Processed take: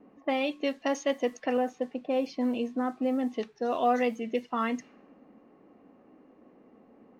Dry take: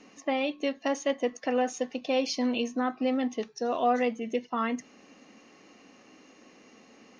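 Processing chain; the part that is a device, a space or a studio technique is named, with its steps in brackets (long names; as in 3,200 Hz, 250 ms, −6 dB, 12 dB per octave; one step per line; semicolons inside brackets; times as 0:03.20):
0:01.57–0:03.34: low-pass filter 1,000 Hz 6 dB per octave
cassette deck with a dynamic noise filter (white noise bed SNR 33 dB; low-pass that shuts in the quiet parts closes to 760 Hz, open at −24 dBFS)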